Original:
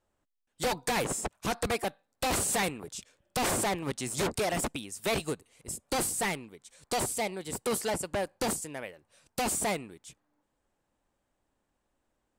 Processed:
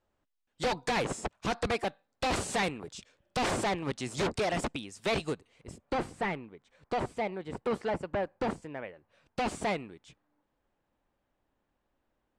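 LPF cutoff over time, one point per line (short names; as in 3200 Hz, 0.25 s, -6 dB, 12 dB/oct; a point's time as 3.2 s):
5.32 s 5200 Hz
5.99 s 2100 Hz
8.87 s 2100 Hz
9.58 s 3800 Hz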